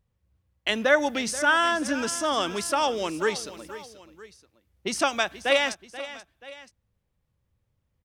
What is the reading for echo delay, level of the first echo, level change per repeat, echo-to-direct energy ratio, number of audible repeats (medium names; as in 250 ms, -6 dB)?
482 ms, -15.0 dB, -6.0 dB, -14.0 dB, 2